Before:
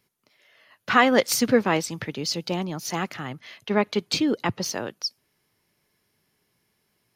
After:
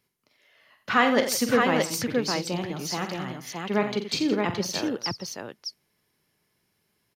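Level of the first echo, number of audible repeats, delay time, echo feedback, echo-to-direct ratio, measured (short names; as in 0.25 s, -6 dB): -9.0 dB, 4, 45 ms, no steady repeat, -1.5 dB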